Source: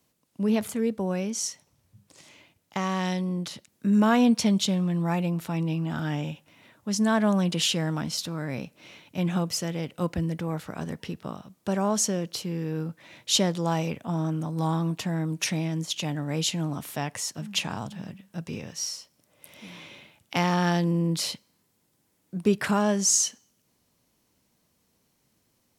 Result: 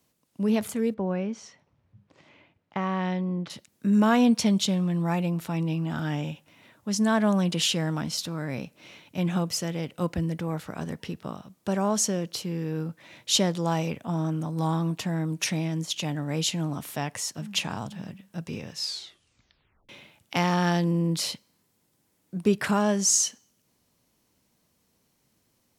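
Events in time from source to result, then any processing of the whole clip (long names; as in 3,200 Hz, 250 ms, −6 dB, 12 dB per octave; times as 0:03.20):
0:00.94–0:03.50: low-pass filter 2,300 Hz
0:18.71: tape stop 1.18 s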